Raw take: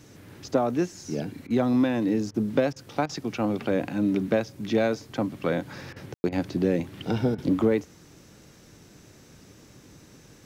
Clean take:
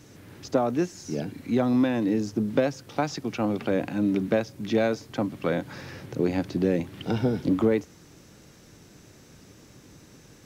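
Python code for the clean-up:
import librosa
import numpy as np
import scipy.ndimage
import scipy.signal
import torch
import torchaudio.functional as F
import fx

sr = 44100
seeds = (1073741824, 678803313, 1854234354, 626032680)

y = fx.fix_ambience(x, sr, seeds[0], print_start_s=8.22, print_end_s=8.72, start_s=6.14, end_s=6.24)
y = fx.fix_interpolate(y, sr, at_s=(1.47, 2.31, 2.73, 3.06, 5.93, 6.29, 7.35), length_ms=31.0)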